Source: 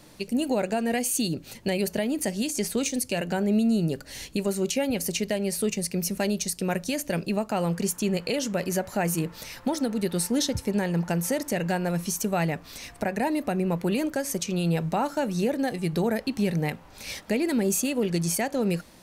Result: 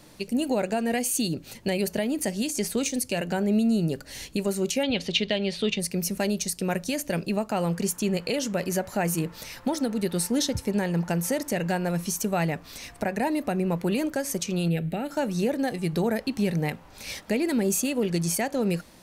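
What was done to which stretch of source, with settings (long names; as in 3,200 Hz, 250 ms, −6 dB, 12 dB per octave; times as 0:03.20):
0:04.83–0:05.80: low-pass with resonance 3,500 Hz, resonance Q 5.4
0:14.68–0:15.11: phaser with its sweep stopped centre 2,500 Hz, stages 4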